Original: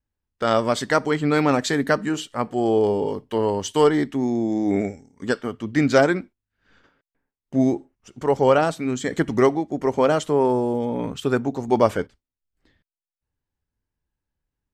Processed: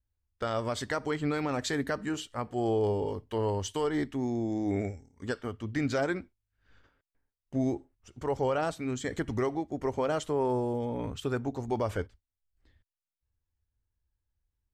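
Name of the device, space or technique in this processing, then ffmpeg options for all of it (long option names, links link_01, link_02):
car stereo with a boomy subwoofer: -af "lowshelf=frequency=120:width_type=q:width=1.5:gain=9,alimiter=limit=-12dB:level=0:latency=1:release=91,volume=-7.5dB"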